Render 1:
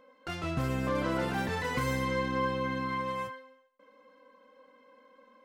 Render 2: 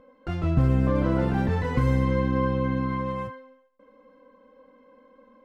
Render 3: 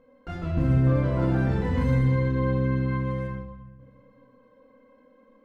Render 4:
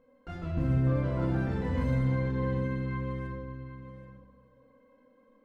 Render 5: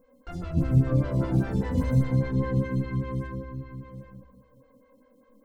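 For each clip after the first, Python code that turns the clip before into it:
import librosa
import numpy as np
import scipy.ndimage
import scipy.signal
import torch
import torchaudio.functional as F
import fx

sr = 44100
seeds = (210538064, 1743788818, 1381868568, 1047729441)

y1 = fx.tilt_eq(x, sr, slope=-3.5)
y1 = F.gain(torch.from_numpy(y1), 1.5).numpy()
y2 = fx.room_shoebox(y1, sr, seeds[0], volume_m3=670.0, walls='mixed', distance_m=1.7)
y2 = F.gain(torch.from_numpy(y2), -6.0).numpy()
y3 = y2 + 10.0 ** (-12.0 / 20.0) * np.pad(y2, (int(777 * sr / 1000.0), 0))[:len(y2)]
y3 = F.gain(torch.from_numpy(y3), -5.5).numpy()
y4 = fx.bass_treble(y3, sr, bass_db=8, treble_db=14)
y4 = fx.stagger_phaser(y4, sr, hz=5.0)
y4 = F.gain(torch.from_numpy(y4), 3.0).numpy()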